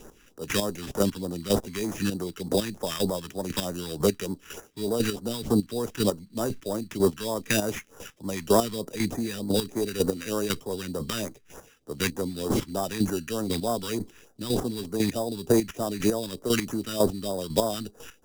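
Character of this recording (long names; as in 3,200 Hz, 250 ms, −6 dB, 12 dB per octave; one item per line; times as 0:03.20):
aliases and images of a low sample rate 4,300 Hz, jitter 0%
chopped level 2 Hz, depth 65%, duty 20%
phaser sweep stages 2, 3.3 Hz, lowest notch 590–2,600 Hz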